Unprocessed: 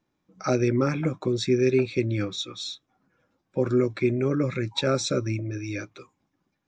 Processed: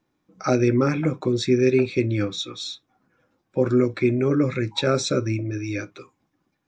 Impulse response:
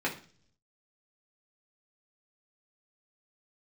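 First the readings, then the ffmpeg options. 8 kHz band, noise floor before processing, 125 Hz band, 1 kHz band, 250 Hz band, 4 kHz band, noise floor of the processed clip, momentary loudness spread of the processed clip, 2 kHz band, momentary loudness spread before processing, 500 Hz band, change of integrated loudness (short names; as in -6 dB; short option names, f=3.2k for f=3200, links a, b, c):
+2.0 dB, -78 dBFS, +2.5 dB, +3.5 dB, +4.0 dB, +2.0 dB, -75 dBFS, 12 LU, +3.5 dB, 12 LU, +3.0 dB, +3.5 dB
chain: -filter_complex "[0:a]asplit=2[a][b];[1:a]atrim=start_sample=2205,atrim=end_sample=3087[c];[b][c]afir=irnorm=-1:irlink=0,volume=-17dB[d];[a][d]amix=inputs=2:normalize=0,volume=1.5dB"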